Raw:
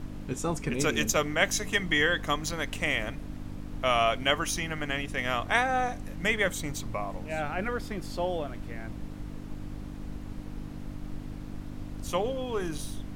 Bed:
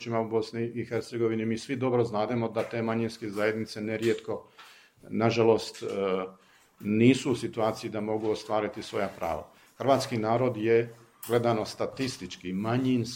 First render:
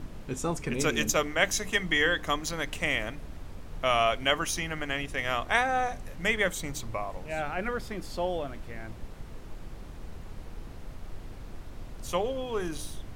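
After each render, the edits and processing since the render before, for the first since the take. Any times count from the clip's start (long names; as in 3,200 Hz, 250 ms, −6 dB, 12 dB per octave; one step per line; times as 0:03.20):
hum removal 50 Hz, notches 6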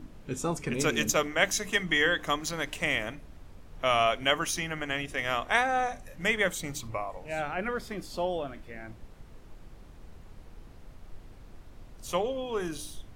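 noise reduction from a noise print 7 dB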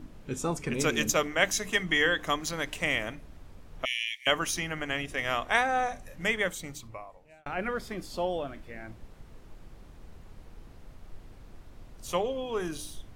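0:03.85–0:04.27: linear-phase brick-wall high-pass 1,700 Hz
0:06.14–0:07.46: fade out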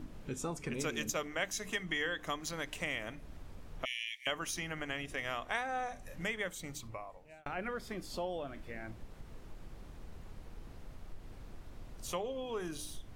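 downward compressor 2 to 1, threshold −41 dBFS, peak gain reduction 12.5 dB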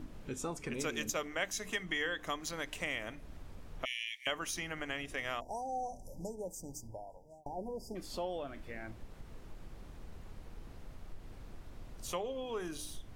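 0:05.40–0:07.96: time-frequency box erased 970–4,700 Hz
dynamic equaliser 150 Hz, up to −4 dB, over −56 dBFS, Q 2.2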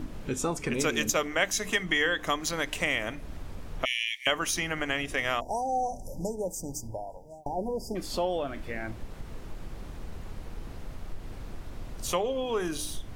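level +9.5 dB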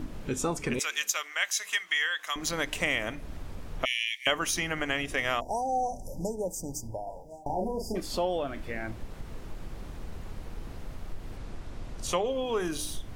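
0:00.79–0:02.36: high-pass filter 1,400 Hz
0:07.03–0:08.00: double-tracking delay 36 ms −3.5 dB
0:11.37–0:12.26: low-pass filter 10,000 Hz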